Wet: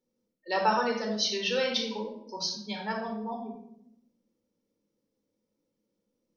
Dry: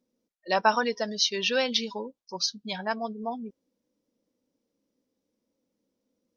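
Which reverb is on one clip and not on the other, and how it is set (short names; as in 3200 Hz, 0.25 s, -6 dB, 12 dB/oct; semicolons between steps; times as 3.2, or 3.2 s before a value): shoebox room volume 1900 m³, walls furnished, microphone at 4.3 m; gain -6.5 dB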